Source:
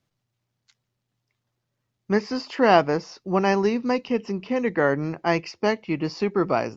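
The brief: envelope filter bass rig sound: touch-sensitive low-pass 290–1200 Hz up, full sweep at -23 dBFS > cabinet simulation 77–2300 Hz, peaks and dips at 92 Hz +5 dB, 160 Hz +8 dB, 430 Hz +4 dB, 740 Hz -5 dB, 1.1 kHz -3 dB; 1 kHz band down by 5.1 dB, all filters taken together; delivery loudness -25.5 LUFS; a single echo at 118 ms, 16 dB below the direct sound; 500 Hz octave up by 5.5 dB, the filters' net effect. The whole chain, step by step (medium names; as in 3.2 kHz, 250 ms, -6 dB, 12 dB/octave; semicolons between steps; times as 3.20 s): peaking EQ 500 Hz +6 dB; peaking EQ 1 kHz -5.5 dB; delay 118 ms -16 dB; touch-sensitive low-pass 290–1200 Hz up, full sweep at -23 dBFS; cabinet simulation 77–2300 Hz, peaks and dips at 92 Hz +5 dB, 160 Hz +8 dB, 430 Hz +4 dB, 740 Hz -5 dB, 1.1 kHz -3 dB; trim -7 dB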